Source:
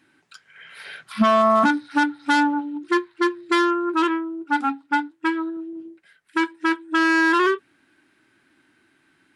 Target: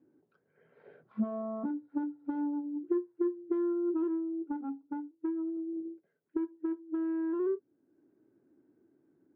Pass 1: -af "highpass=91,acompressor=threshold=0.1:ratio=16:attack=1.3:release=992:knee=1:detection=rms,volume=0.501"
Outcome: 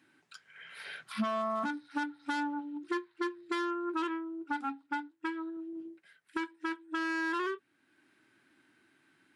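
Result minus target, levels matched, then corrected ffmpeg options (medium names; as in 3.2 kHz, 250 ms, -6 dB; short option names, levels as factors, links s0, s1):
500 Hz band -3.0 dB
-af "highpass=91,acompressor=threshold=0.1:ratio=16:attack=1.3:release=992:knee=1:detection=rms,lowpass=f=450:t=q:w=2.2,volume=0.501"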